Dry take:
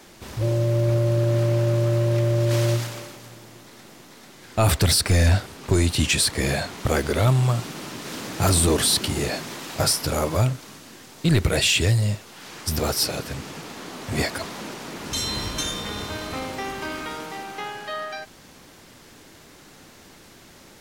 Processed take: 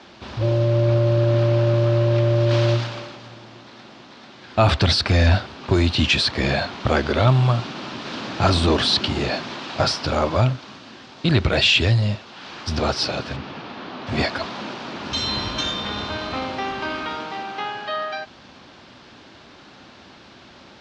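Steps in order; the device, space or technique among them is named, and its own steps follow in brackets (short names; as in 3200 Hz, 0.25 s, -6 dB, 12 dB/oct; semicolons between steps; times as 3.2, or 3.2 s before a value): guitar cabinet (speaker cabinet 75–4500 Hz, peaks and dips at 99 Hz -4 dB, 160 Hz -7 dB, 310 Hz -3 dB, 450 Hz -6 dB, 2000 Hz -5 dB); 13.36–14.07 air absorption 130 m; gain +5.5 dB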